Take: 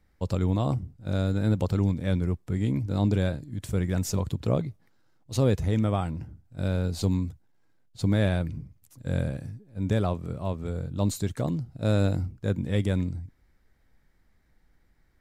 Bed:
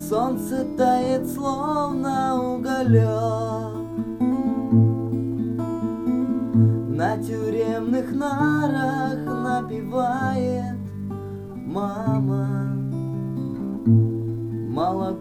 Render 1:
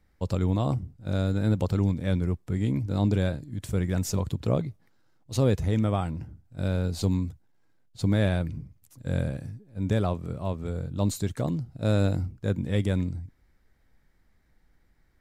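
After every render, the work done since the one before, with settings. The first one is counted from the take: nothing audible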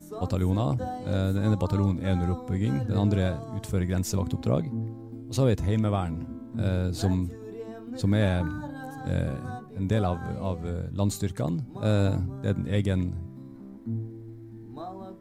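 add bed -16 dB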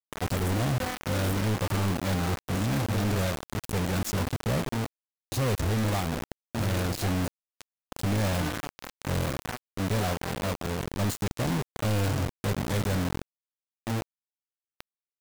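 soft clip -22 dBFS, distortion -11 dB; bit-crush 5-bit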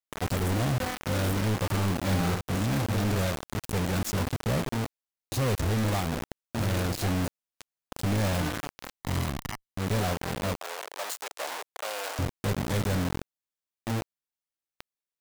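1.95–2.41 flutter echo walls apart 10.8 m, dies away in 0.58 s; 9–9.87 minimum comb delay 0.99 ms; 10.56–12.19 HPF 550 Hz 24 dB/oct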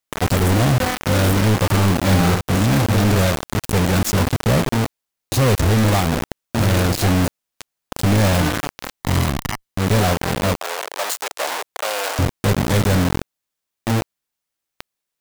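gain +11 dB

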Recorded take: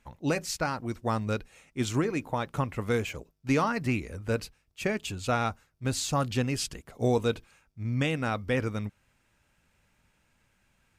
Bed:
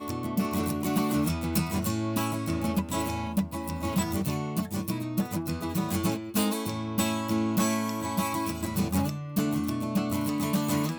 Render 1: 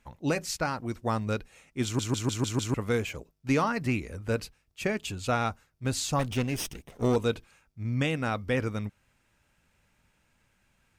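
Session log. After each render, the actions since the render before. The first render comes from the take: 1.84 stutter in place 0.15 s, 6 plays; 6.19–7.16 minimum comb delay 0.33 ms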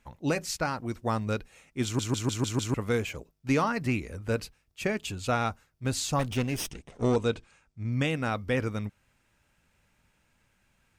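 6.71–7.92 Chebyshev low-pass 8400 Hz, order 3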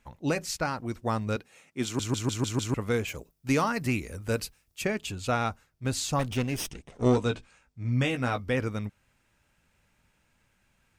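1.36–2 HPF 150 Hz; 3.07–4.81 high shelf 8600 Hz -> 5400 Hz +11.5 dB; 7.04–8.4 doubler 16 ms -5.5 dB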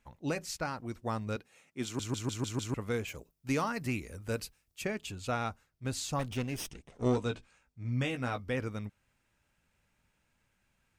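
gain -6 dB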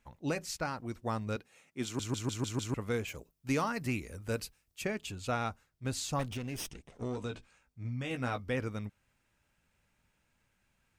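6.25–8.11 compressor, threshold -33 dBFS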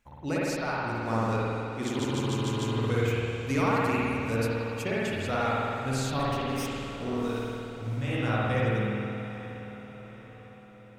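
diffused feedback echo 0.766 s, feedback 48%, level -13 dB; spring tank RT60 2.4 s, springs 53 ms, chirp 35 ms, DRR -7 dB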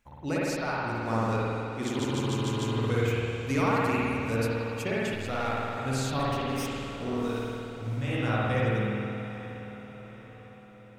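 5.14–5.77 half-wave gain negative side -7 dB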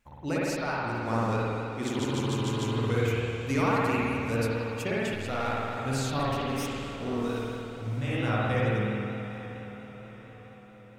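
vibrato 4.4 Hz 38 cents

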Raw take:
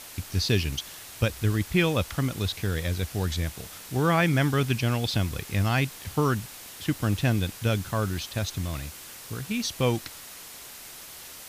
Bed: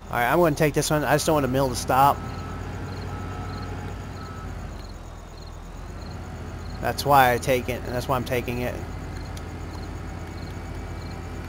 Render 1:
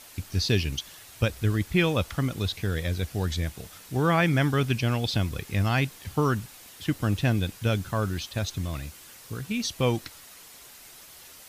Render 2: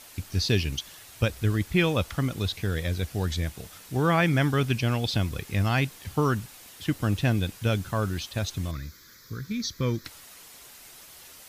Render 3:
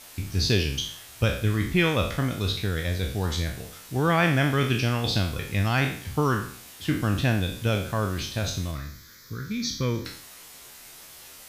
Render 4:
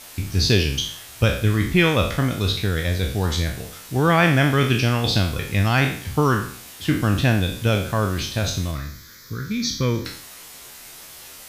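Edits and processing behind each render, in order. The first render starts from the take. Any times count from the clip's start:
denoiser 6 dB, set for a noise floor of -44 dBFS
8.71–10.05 fixed phaser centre 2800 Hz, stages 6
spectral trails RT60 0.54 s
gain +5 dB

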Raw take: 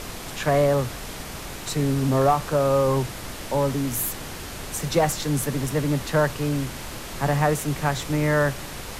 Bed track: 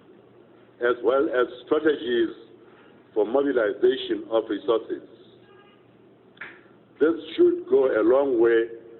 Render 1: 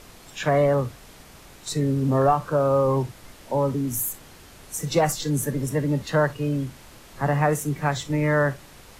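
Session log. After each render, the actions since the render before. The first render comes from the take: noise print and reduce 12 dB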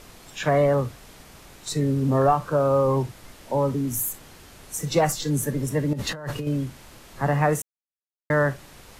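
5.93–6.47 negative-ratio compressor -31 dBFS; 7.62–8.3 mute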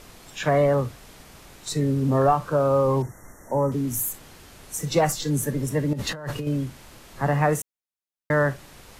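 3.02–3.72 brick-wall FIR band-stop 2100–5500 Hz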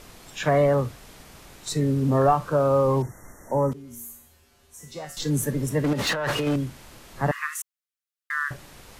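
3.73–5.17 resonator 79 Hz, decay 0.6 s, harmonics odd, mix 90%; 5.84–6.56 overdrive pedal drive 21 dB, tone 4300 Hz, clips at -16 dBFS; 7.31–8.51 steep high-pass 1100 Hz 96 dB/oct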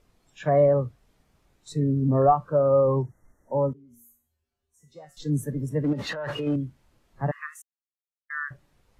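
spectral expander 1.5:1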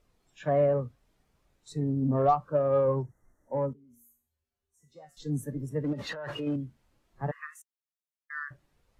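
added harmonics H 7 -36 dB, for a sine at -8.5 dBFS; flange 0.67 Hz, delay 1.5 ms, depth 3.1 ms, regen +77%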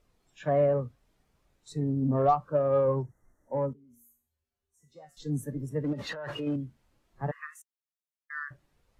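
nothing audible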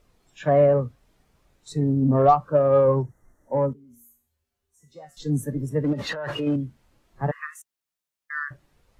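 gain +7 dB

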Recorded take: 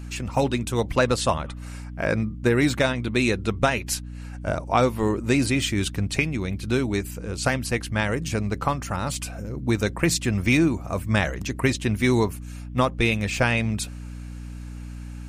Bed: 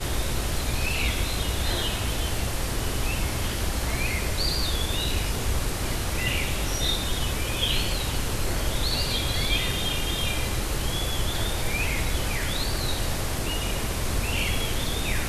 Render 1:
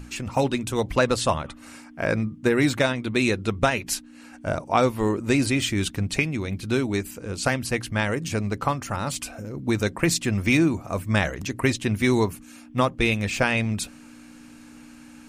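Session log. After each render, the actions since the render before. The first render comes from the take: notches 60/120/180 Hz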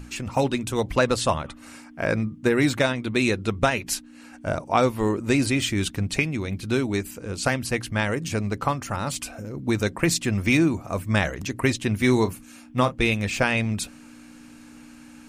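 11.98–12.98 doubler 32 ms -12.5 dB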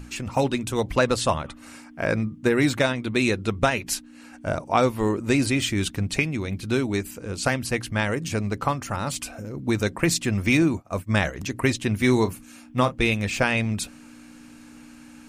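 10.62–11.35 expander -28 dBFS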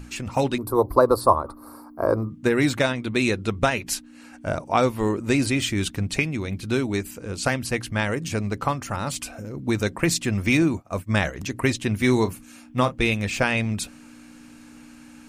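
0.58–2.3 EQ curve 110 Hz 0 dB, 160 Hz -11 dB, 350 Hz +7 dB, 760 Hz +3 dB, 1100 Hz +10 dB, 1800 Hz -15 dB, 3000 Hz -30 dB, 4500 Hz -3 dB, 6600 Hz -20 dB, 12000 Hz +12 dB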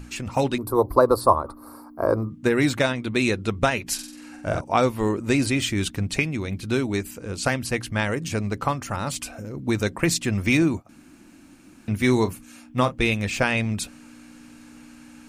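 3.94–4.61 flutter echo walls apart 8 m, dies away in 0.59 s; 10.89–11.88 room tone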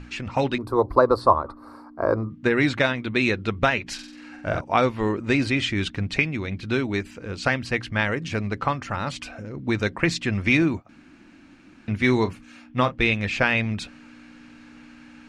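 Chebyshev low-pass 3900 Hz, order 2; bell 1800 Hz +4 dB 1.1 oct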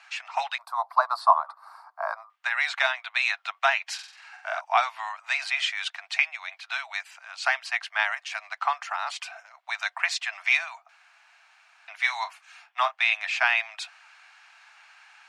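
steep high-pass 670 Hz 96 dB/oct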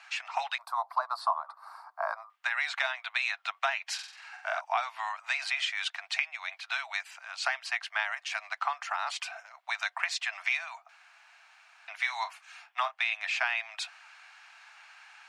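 compressor 3:1, threshold -28 dBFS, peak gain reduction 12 dB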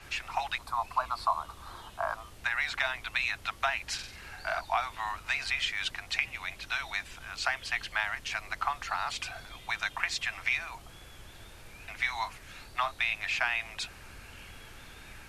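add bed -24 dB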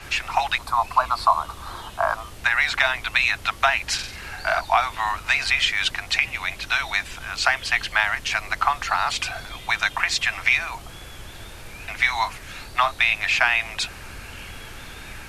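gain +10.5 dB; limiter -3 dBFS, peak gain reduction 2.5 dB

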